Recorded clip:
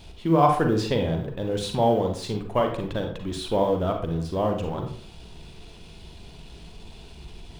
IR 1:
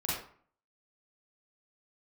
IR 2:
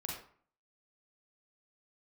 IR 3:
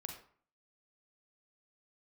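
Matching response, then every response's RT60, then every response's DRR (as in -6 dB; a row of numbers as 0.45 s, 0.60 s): 3; 0.50 s, 0.50 s, 0.50 s; -7.5 dB, -2.5 dB, 2.5 dB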